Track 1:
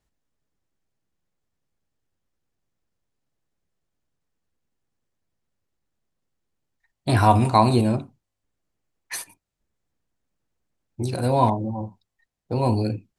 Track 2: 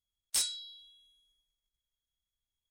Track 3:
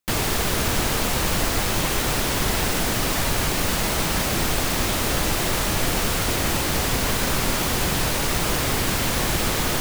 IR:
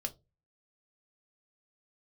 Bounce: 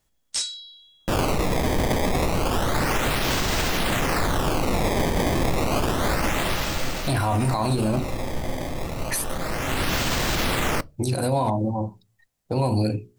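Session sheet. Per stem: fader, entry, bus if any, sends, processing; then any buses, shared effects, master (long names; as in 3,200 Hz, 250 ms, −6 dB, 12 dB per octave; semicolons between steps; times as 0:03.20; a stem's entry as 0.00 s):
+3.0 dB, 0.00 s, bus A, send −11.5 dB, mains-hum notches 60/120/180/240/300/360/420 Hz
+1.0 dB, 0.00 s, bus A, send −8 dB, low-pass filter 7,200 Hz 24 dB per octave
+1.0 dB, 1.00 s, no bus, send −12.5 dB, sample-and-hold swept by an LFO 18×, swing 160% 0.3 Hz; automatic ducking −17 dB, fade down 0.80 s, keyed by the first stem
bus A: 0.0 dB, high-shelf EQ 6,700 Hz +10 dB; brickwall limiter −11 dBFS, peak gain reduction 10.5 dB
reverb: on, pre-delay 3 ms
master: brickwall limiter −14.5 dBFS, peak gain reduction 9.5 dB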